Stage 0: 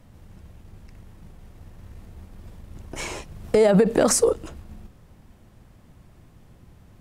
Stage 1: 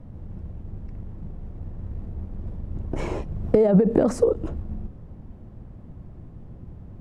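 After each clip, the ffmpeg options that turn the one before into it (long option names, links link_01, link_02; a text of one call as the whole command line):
ffmpeg -i in.wav -af "highshelf=frequency=6500:gain=-10,acompressor=threshold=-21dB:ratio=12,tiltshelf=frequency=1100:gain=10" out.wav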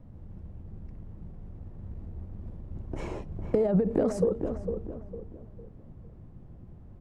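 ffmpeg -i in.wav -filter_complex "[0:a]asplit=2[link_01][link_02];[link_02]adelay=454,lowpass=frequency=1300:poles=1,volume=-7dB,asplit=2[link_03][link_04];[link_04]adelay=454,lowpass=frequency=1300:poles=1,volume=0.37,asplit=2[link_05][link_06];[link_06]adelay=454,lowpass=frequency=1300:poles=1,volume=0.37,asplit=2[link_07][link_08];[link_08]adelay=454,lowpass=frequency=1300:poles=1,volume=0.37[link_09];[link_01][link_03][link_05][link_07][link_09]amix=inputs=5:normalize=0,volume=-7.5dB" out.wav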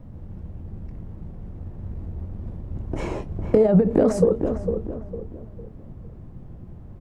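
ffmpeg -i in.wav -filter_complex "[0:a]asplit=2[link_01][link_02];[link_02]adelay=23,volume=-12dB[link_03];[link_01][link_03]amix=inputs=2:normalize=0,volume=7.5dB" out.wav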